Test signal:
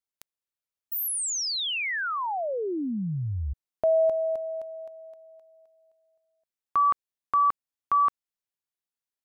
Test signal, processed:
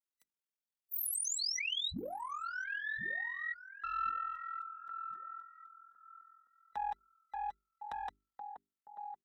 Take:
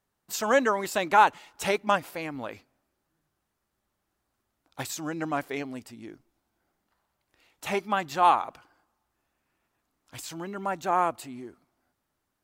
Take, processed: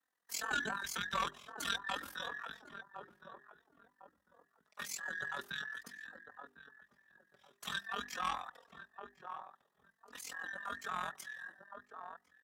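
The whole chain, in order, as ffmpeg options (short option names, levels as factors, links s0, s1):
-filter_complex "[0:a]afftfilt=real='real(if(between(b,1,1012),(2*floor((b-1)/92)+1)*92-b,b),0)':imag='imag(if(between(b,1,1012),(2*floor((b-1)/92)+1)*92-b,b),0)*if(between(b,1,1012),-1,1)':win_size=2048:overlap=0.75,asplit=2[s0][s1];[s1]adelay=1056,lowpass=f=850:p=1,volume=0.266,asplit=2[s2][s3];[s3]adelay=1056,lowpass=f=850:p=1,volume=0.29,asplit=2[s4][s5];[s5]adelay=1056,lowpass=f=850:p=1,volume=0.29[s6];[s2][s4][s6]amix=inputs=3:normalize=0[s7];[s0][s7]amix=inputs=2:normalize=0,tremolo=f=42:d=0.889,aeval=exprs='(tanh(3.98*val(0)+0.3)-tanh(0.3))/3.98':c=same,flanger=delay=3.7:depth=1.8:regen=-13:speed=0.48:shape=triangular,acrossover=split=210|2200[s8][s9][s10];[s9]acompressor=threshold=0.00631:ratio=2:attack=0.35:release=62:knee=2.83:detection=peak[s11];[s8][s11][s10]amix=inputs=3:normalize=0,highpass=81,bandreject=f=50:t=h:w=6,bandreject=f=100:t=h:w=6,bandreject=f=150:t=h:w=6,bandreject=f=200:t=h:w=6,bandreject=f=250:t=h:w=6,bandreject=f=300:t=h:w=6,bandreject=f=350:t=h:w=6,bandreject=f=400:t=h:w=6,volume=1.12"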